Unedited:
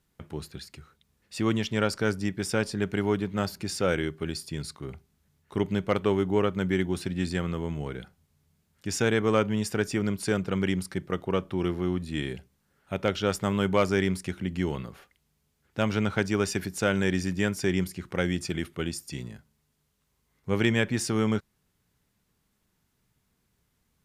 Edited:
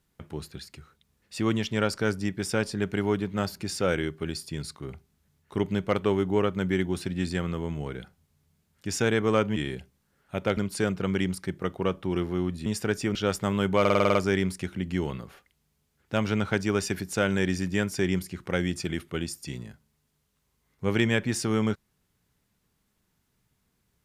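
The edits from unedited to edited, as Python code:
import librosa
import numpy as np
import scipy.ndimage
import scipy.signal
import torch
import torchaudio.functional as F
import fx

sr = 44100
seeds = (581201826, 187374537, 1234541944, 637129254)

y = fx.edit(x, sr, fx.swap(start_s=9.56, length_s=0.49, other_s=12.14, other_length_s=1.01),
    fx.stutter(start_s=13.8, slice_s=0.05, count=8), tone=tone)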